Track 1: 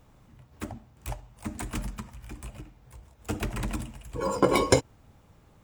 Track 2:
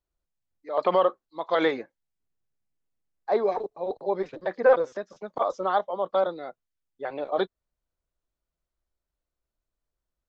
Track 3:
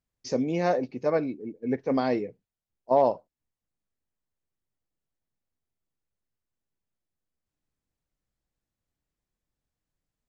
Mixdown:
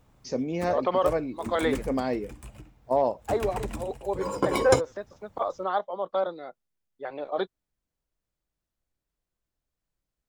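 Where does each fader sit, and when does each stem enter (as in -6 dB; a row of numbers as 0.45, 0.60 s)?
-3.5, -3.0, -2.5 dB; 0.00, 0.00, 0.00 s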